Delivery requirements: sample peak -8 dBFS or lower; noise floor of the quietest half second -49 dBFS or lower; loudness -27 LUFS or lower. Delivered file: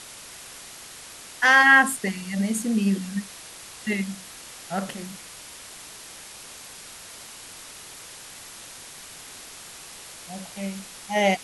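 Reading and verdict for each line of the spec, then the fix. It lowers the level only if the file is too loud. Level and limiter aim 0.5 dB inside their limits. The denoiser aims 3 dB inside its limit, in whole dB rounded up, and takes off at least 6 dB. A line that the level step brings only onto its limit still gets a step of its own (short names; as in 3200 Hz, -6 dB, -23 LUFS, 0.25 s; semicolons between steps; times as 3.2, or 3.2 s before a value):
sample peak -5.0 dBFS: fail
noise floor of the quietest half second -43 dBFS: fail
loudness -22.0 LUFS: fail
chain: denoiser 6 dB, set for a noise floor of -43 dBFS; gain -5.5 dB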